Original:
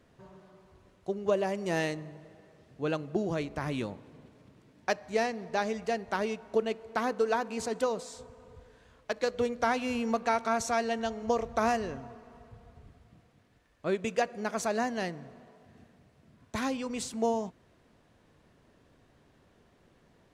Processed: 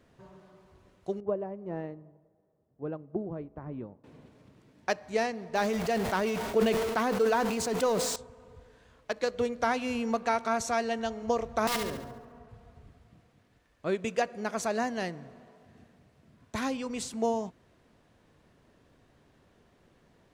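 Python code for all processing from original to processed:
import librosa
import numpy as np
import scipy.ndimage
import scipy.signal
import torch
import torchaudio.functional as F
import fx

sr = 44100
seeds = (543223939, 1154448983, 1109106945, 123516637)

y = fx.chain(x, sr, fx.cheby1_lowpass(hz=780.0, order=2),
    fx.dynamic_eq(hz=670.0, q=1.1, threshold_db=-41.0, ratio=4.0, max_db=-4),
    fx.upward_expand(threshold_db=-55.0, expansion=1.5), at=(1.2, 4.04))
y = fx.chain(y, sr, fx.zero_step(step_db=-38.5),
    fx.sustainer(db_per_s=32.0), at=(5.55, 8.16))
y = fx.chain(y, sr, fx.high_shelf(hz=2300.0, db=-7.0),
    fx.overflow_wrap(gain_db=24.5),
    fx.room_flutter(wall_m=12.0, rt60_s=0.71), at=(11.67, 12.49))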